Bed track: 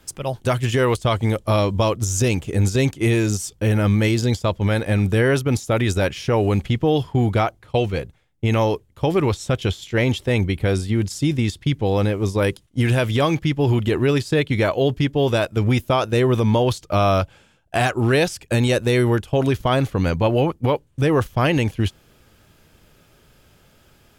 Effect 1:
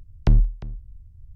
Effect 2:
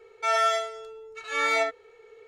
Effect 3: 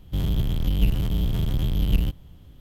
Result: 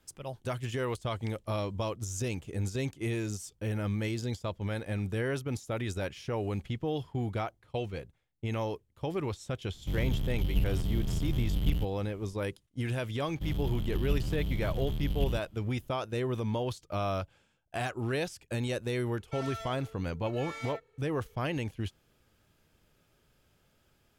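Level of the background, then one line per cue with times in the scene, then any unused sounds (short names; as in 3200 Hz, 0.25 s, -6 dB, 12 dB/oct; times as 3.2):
bed track -14.5 dB
1 add 1 -10 dB + steep high-pass 2000 Hz
9.74 add 3 -7.5 dB
13.28 add 3 -9.5 dB
19.09 add 2 -13.5 dB + soft clip -25 dBFS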